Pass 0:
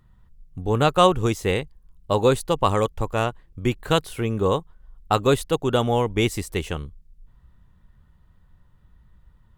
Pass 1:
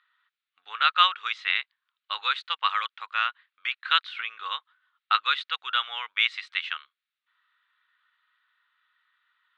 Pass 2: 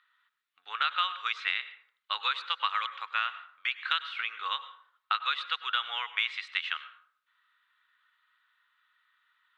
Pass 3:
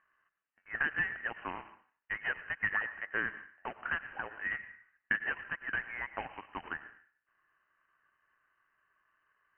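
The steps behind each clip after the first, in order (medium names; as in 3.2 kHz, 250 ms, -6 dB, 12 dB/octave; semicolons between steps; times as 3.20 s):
Chebyshev band-pass 1.3–3.9 kHz, order 3; trim +5.5 dB
compression 6:1, threshold -25 dBFS, peak gain reduction 11 dB; plate-style reverb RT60 0.58 s, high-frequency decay 0.6×, pre-delay 85 ms, DRR 13 dB
median filter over 15 samples; frequency inversion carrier 3 kHz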